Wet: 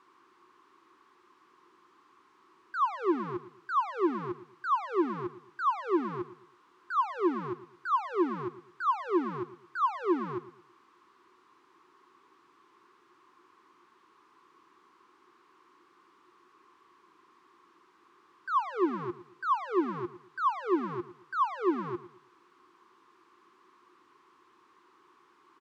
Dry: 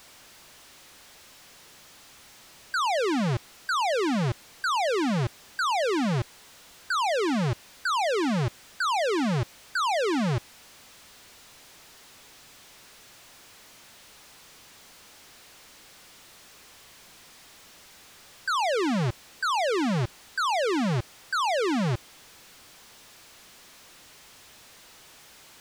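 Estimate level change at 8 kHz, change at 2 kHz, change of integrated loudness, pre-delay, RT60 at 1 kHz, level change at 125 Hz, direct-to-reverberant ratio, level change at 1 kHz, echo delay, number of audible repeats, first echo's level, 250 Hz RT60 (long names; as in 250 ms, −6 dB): below −25 dB, −10.5 dB, −5.0 dB, no reverb audible, no reverb audible, −18.0 dB, no reverb audible, −2.0 dB, 112 ms, 3, −15.0 dB, no reverb audible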